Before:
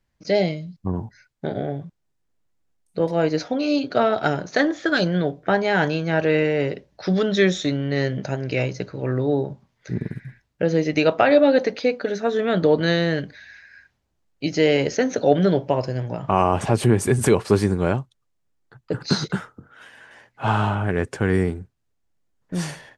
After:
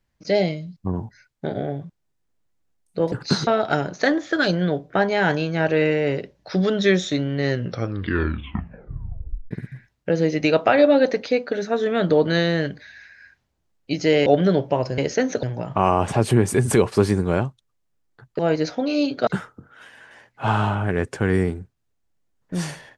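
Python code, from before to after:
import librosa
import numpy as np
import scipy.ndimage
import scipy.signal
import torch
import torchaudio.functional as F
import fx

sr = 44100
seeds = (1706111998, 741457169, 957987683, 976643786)

y = fx.edit(x, sr, fx.swap(start_s=3.12, length_s=0.88, other_s=18.92, other_length_s=0.35),
    fx.tape_stop(start_s=8.02, length_s=2.02),
    fx.move(start_s=14.79, length_s=0.45, to_s=15.96), tone=tone)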